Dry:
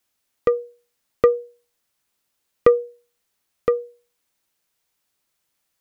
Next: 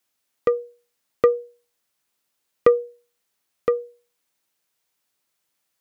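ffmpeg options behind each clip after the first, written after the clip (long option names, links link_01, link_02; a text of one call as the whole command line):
ffmpeg -i in.wav -af "lowshelf=frequency=78:gain=-11,volume=-1dB" out.wav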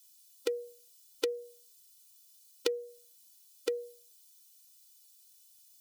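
ffmpeg -i in.wav -af "acompressor=threshold=-24dB:ratio=8,aexciter=amount=8:drive=6.7:freq=2900,afftfilt=real='re*eq(mod(floor(b*sr/1024/260),2),1)':imag='im*eq(mod(floor(b*sr/1024/260),2),1)':win_size=1024:overlap=0.75,volume=-4dB" out.wav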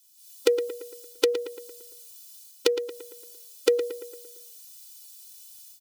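ffmpeg -i in.wav -filter_complex "[0:a]dynaudnorm=framelen=150:gausssize=3:maxgain=13dB,asplit=2[link_01][link_02];[link_02]adelay=114,lowpass=frequency=3400:poles=1,volume=-9.5dB,asplit=2[link_03][link_04];[link_04]adelay=114,lowpass=frequency=3400:poles=1,volume=0.53,asplit=2[link_05][link_06];[link_06]adelay=114,lowpass=frequency=3400:poles=1,volume=0.53,asplit=2[link_07][link_08];[link_08]adelay=114,lowpass=frequency=3400:poles=1,volume=0.53,asplit=2[link_09][link_10];[link_10]adelay=114,lowpass=frequency=3400:poles=1,volume=0.53,asplit=2[link_11][link_12];[link_12]adelay=114,lowpass=frequency=3400:poles=1,volume=0.53[link_13];[link_03][link_05][link_07][link_09][link_11][link_13]amix=inputs=6:normalize=0[link_14];[link_01][link_14]amix=inputs=2:normalize=0" out.wav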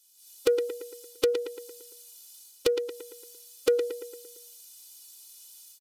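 ffmpeg -i in.wav -af "aresample=32000,aresample=44100,asoftclip=type=tanh:threshold=-13.5dB" out.wav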